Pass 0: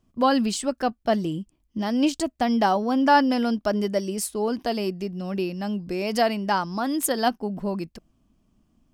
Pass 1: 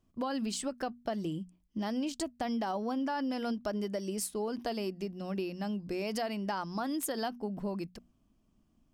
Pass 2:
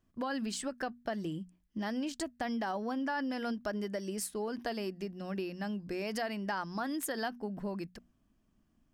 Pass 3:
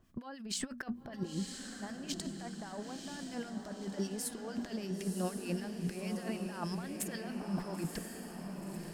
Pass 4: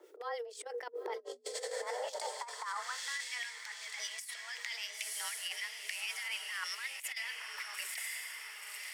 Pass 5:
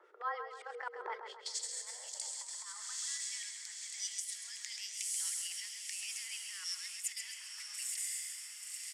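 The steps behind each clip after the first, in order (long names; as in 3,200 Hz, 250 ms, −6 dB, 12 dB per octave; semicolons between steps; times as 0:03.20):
mains-hum notches 60/120/180/240 Hz; brickwall limiter −15.5 dBFS, peak gain reduction 7.5 dB; downward compressor, threshold −25 dBFS, peak gain reduction 6.5 dB; level −5.5 dB
parametric band 1,700 Hz +8 dB 0.53 octaves; level −2 dB
compressor whose output falls as the input rises −41 dBFS, ratio −0.5; two-band tremolo in antiphase 6.5 Hz, depth 70%, crossover 1,400 Hz; feedback delay with all-pass diffusion 994 ms, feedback 54%, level −5 dB; level +5 dB
high-pass filter sweep 140 Hz → 1,900 Hz, 0:01.18–0:03.29; compressor whose output falls as the input rises −44 dBFS, ratio −0.5; frequency shifter +240 Hz; level +4 dB
band-pass filter sweep 1,300 Hz → 7,400 Hz, 0:01.10–0:01.61; repeating echo 133 ms, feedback 48%, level −8 dB; level +8 dB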